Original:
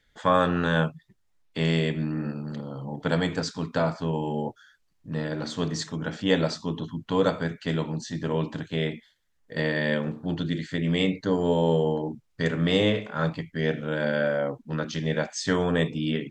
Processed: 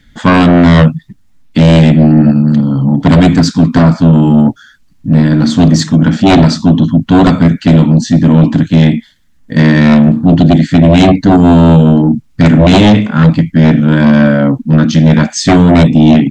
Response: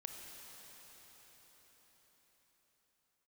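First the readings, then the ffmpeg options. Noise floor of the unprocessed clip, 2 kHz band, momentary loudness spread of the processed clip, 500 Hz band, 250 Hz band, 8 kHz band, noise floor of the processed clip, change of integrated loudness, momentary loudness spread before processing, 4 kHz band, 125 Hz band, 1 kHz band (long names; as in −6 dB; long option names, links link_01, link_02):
−69 dBFS, +13.0 dB, 5 LU, +12.5 dB, +23.0 dB, +16.5 dB, −45 dBFS, +20.0 dB, 9 LU, +13.5 dB, +22.5 dB, +16.0 dB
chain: -af "lowshelf=frequency=330:width_type=q:width=3:gain=7.5,aeval=exprs='0.668*sin(PI/2*3.16*val(0)/0.668)':channel_layout=same,volume=2.5dB"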